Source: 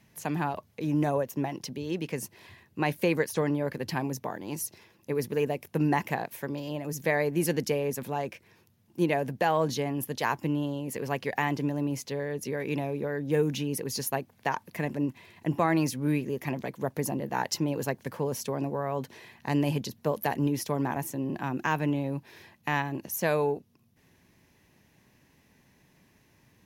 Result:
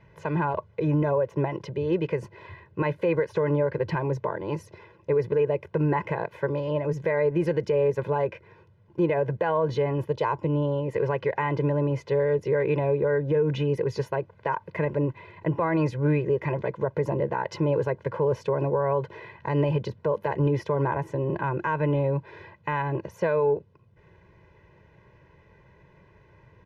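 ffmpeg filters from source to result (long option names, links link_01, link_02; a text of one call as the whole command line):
ffmpeg -i in.wav -filter_complex "[0:a]asettb=1/sr,asplit=3[link_01][link_02][link_03];[link_01]atrim=end=10.084[link_04];[link_02]atrim=start=10.08:end=10.71,asetpts=PTS-STARTPTS,afade=type=in:duration=0.004:curve=qsin,afade=type=out:start_time=0.626:duration=0.004:curve=qsin,equalizer=frequency=1700:width=1.8:gain=-7.5[link_05];[link_03]atrim=start=10.706[link_06];[link_04][link_05]acrossfade=duration=0.004:curve1=hsin:curve2=qsin[link_07];[link_07][link_06]acrossfade=duration=0.004:curve1=qsin:curve2=hsin,lowpass=1700,aecho=1:1:2:0.95,alimiter=limit=-22dB:level=0:latency=1:release=101,volume=6.5dB" out.wav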